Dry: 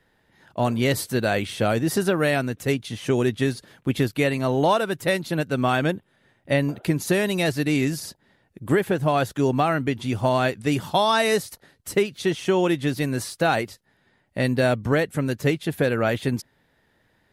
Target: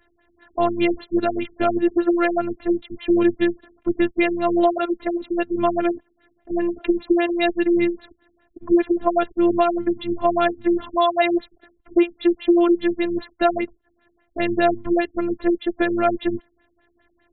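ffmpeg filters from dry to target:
-af "afftfilt=real='hypot(re,im)*cos(PI*b)':imag='0':win_size=512:overlap=0.75,afftfilt=real='re*lt(b*sr/1024,370*pow(4400/370,0.5+0.5*sin(2*PI*5*pts/sr)))':imag='im*lt(b*sr/1024,370*pow(4400/370,0.5+0.5*sin(2*PI*5*pts/sr)))':win_size=1024:overlap=0.75,volume=2.24"

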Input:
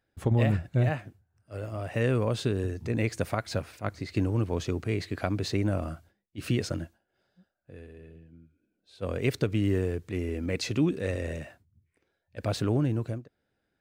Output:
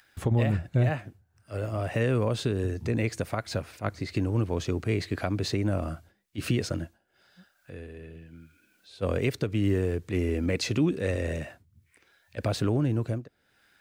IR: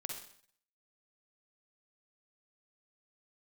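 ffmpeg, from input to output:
-filter_complex "[0:a]acrossover=split=720|860[s0][s1][s2];[s2]acompressor=mode=upward:threshold=0.002:ratio=2.5[s3];[s0][s1][s3]amix=inputs=3:normalize=0,alimiter=limit=0.1:level=0:latency=1:release=491,volume=1.68"

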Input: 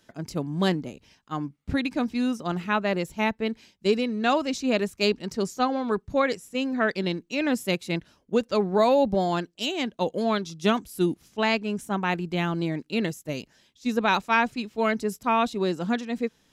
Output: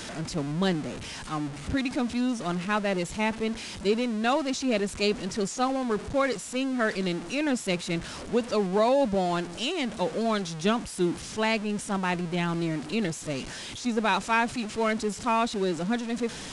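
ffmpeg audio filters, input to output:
-af "aeval=exprs='val(0)+0.5*0.0355*sgn(val(0))':c=same,aresample=22050,aresample=44100,volume=0.668"

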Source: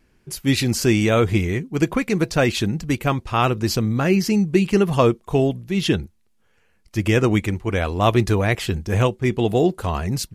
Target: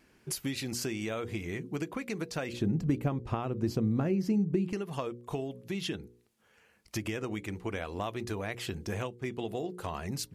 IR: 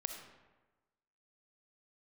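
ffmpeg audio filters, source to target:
-filter_complex "[0:a]highpass=f=170:p=1,bandreject=f=60:t=h:w=6,bandreject=f=120:t=h:w=6,bandreject=f=180:t=h:w=6,bandreject=f=240:t=h:w=6,bandreject=f=300:t=h:w=6,bandreject=f=360:t=h:w=6,bandreject=f=420:t=h:w=6,bandreject=f=480:t=h:w=6,bandreject=f=540:t=h:w=6,acompressor=threshold=0.0224:ratio=12,asettb=1/sr,asplit=3[s0][s1][s2];[s0]atrim=end=2.534[s3];[s1]atrim=start=2.53:end=4.73,asetpts=PTS-STARTPTS,afade=t=in:d=0.004:c=qsin,afade=t=out:st=2.196:d=0.004:c=qsin,tiltshelf=f=850:g=9[s4];[s2]atrim=start=4.726[s5];[s3][s4]acrossfade=d=0.004:c1=hsin:c2=qsin[s6];[s6][s5]acrossfade=d=0.004:c1=qsin:c2=hsin,volume=1.12"

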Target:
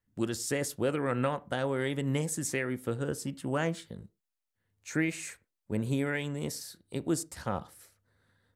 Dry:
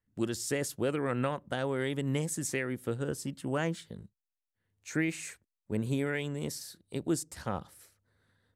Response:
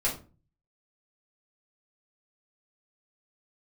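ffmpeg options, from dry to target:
-filter_complex "[0:a]asplit=2[s0][s1];[s1]acrossover=split=310 3100:gain=0.0794 1 0.2[s2][s3][s4];[s2][s3][s4]amix=inputs=3:normalize=0[s5];[1:a]atrim=start_sample=2205,atrim=end_sample=6174[s6];[s5][s6]afir=irnorm=-1:irlink=0,volume=0.106[s7];[s0][s7]amix=inputs=2:normalize=0,volume=1.12"

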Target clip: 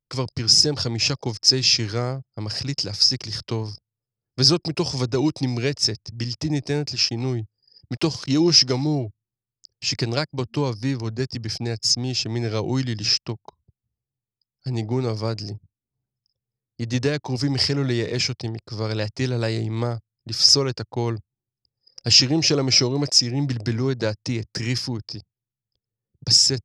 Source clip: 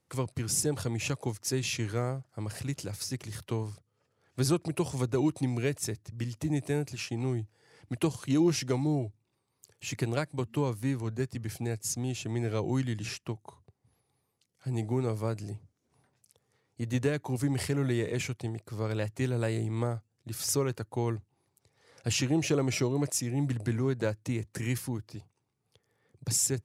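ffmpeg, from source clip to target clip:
-filter_complex "[0:a]asettb=1/sr,asplit=3[s0][s1][s2];[s0]atrim=end=7.944[s3];[s1]atrim=start=7.94:end=8.86,asetpts=PTS-STARTPTS,afade=t=in:d=0.004:c=qsin,afade=t=out:st=0.916:d=0.004:c=qsin,aeval=exprs='val(0)*gte(abs(val(0)),0.00376)':c=same[s4];[s2]atrim=start=8.856[s5];[s3][s4]acrossfade=d=0.004:c1=hsin:c2=qsin[s6];[s6][s5]acrossfade=d=0.004:c1=qsin:c2=hsin,lowpass=f=5100:t=q:w=11,anlmdn=0.0398,volume=2"

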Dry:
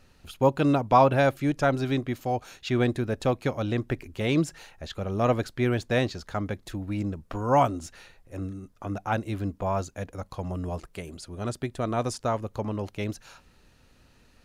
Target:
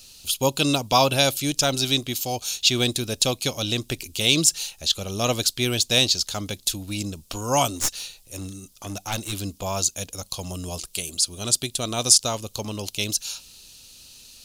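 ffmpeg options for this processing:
-filter_complex "[0:a]aexciter=amount=14.1:drive=3.7:freq=2800,asettb=1/sr,asplit=3[s0][s1][s2];[s0]atrim=end=7.764[s3];[s1]atrim=start=7.76:end=9.33,asetpts=PTS-STARTPTS,afade=t=in:d=0.004:c=qsin,afade=t=out:st=1.566:d=0.004:c=qsin,aeval=exprs='clip(val(0),-1,0.0398)':c=same[s4];[s2]atrim=start=9.326[s5];[s3][s4]acrossfade=d=0.004:c1=hsin:c2=qsin[s6];[s6][s5]acrossfade=d=0.004:c1=qsin:c2=hsin,volume=0.891"

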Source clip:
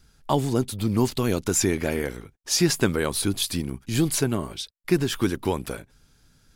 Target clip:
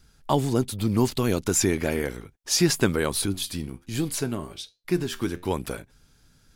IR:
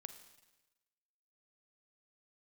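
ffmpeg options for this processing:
-filter_complex "[0:a]asettb=1/sr,asplit=3[s0][s1][s2];[s0]atrim=end=3.264[s3];[s1]atrim=start=3.26:end=5.51,asetpts=PTS-STARTPTS,afade=t=in:d=0.004:c=qsin,afade=t=out:st=2.246:d=0.004:c=qsin,flanger=delay=9.9:depth=3.2:regen=78:speed=1.3:shape=triangular[s4];[s2]atrim=start=5.506[s5];[s3][s4]acrossfade=d=0.004:c1=hsin:c2=qsin[s6];[s6][s5]acrossfade=d=0.004:c1=qsin:c2=hsin"

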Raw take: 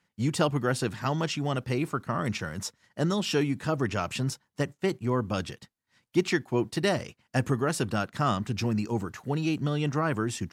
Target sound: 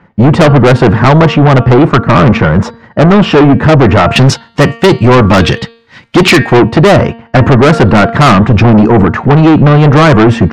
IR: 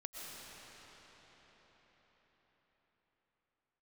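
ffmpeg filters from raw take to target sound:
-af "asetnsamples=n=441:p=0,asendcmd='4.16 lowpass f 3400;6.57 lowpass f 1400',lowpass=1200,bandreject=f=230.6:t=h:w=4,bandreject=f=461.2:t=h:w=4,bandreject=f=691.8:t=h:w=4,bandreject=f=922.4:t=h:w=4,bandreject=f=1153:t=h:w=4,bandreject=f=1383.6:t=h:w=4,bandreject=f=1614.2:t=h:w=4,bandreject=f=1844.8:t=h:w=4,bandreject=f=2075.4:t=h:w=4,bandreject=f=2306:t=h:w=4,bandreject=f=2536.6:t=h:w=4,bandreject=f=2767.2:t=h:w=4,bandreject=f=2997.8:t=h:w=4,bandreject=f=3228.4:t=h:w=4,bandreject=f=3459:t=h:w=4,bandreject=f=3689.6:t=h:w=4,bandreject=f=3920.2:t=h:w=4,bandreject=f=4150.8:t=h:w=4,bandreject=f=4381.4:t=h:w=4,bandreject=f=4612:t=h:w=4,bandreject=f=4842.6:t=h:w=4,asoftclip=type=tanh:threshold=0.0316,apsyclip=53.1,volume=0.841"

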